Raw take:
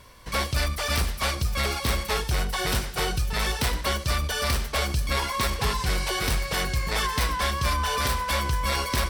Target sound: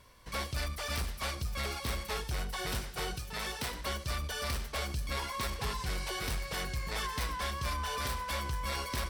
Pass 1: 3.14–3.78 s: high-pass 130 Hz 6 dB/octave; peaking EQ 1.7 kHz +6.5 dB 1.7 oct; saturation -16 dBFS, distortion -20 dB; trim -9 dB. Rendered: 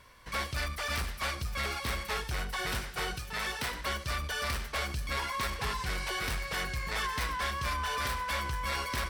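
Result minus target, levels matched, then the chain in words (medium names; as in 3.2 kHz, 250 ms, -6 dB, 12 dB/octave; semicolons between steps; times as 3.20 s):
2 kHz band +3.0 dB
3.14–3.78 s: high-pass 130 Hz 6 dB/octave; saturation -16 dBFS, distortion -25 dB; trim -9 dB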